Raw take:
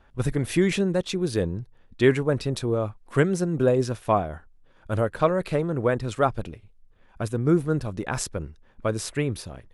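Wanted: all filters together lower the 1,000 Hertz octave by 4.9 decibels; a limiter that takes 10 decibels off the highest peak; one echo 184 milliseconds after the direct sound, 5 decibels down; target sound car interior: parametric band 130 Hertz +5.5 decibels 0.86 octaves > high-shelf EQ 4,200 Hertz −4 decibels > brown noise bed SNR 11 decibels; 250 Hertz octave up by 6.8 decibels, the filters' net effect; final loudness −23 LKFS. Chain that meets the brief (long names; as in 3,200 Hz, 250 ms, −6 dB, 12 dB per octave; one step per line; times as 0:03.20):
parametric band 250 Hz +8.5 dB
parametric band 1,000 Hz −7.5 dB
brickwall limiter −14 dBFS
parametric band 130 Hz +5.5 dB 0.86 octaves
high-shelf EQ 4,200 Hz −4 dB
single-tap delay 184 ms −5 dB
brown noise bed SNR 11 dB
level −0.5 dB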